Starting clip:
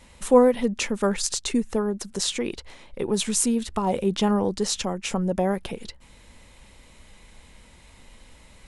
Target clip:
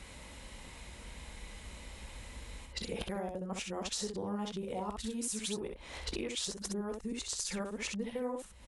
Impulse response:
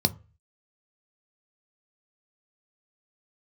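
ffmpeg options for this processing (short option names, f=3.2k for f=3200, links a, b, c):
-filter_complex "[0:a]areverse,highpass=42,acompressor=threshold=-36dB:ratio=10,asubboost=boost=3:cutoff=81,asplit=2[a][b];[b]aecho=0:1:19|64:0.211|0.596[c];[a][c]amix=inputs=2:normalize=0,volume=1dB"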